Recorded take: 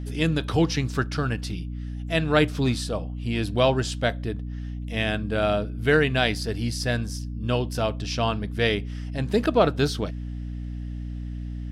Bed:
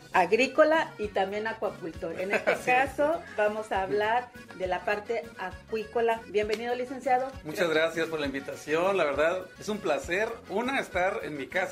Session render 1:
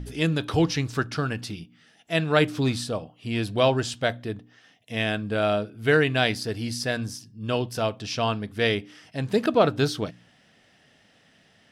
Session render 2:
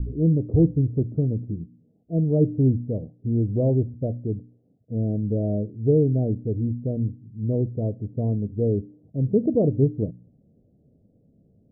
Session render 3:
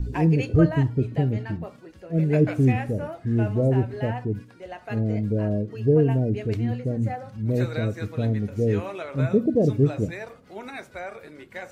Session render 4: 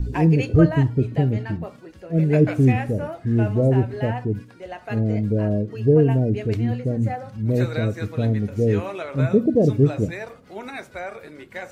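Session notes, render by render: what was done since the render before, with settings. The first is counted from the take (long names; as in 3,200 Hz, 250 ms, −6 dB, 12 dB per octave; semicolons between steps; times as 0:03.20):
hum removal 60 Hz, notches 5
Butterworth low-pass 530 Hz 36 dB per octave; low-shelf EQ 180 Hz +11 dB
mix in bed −8.5 dB
level +3 dB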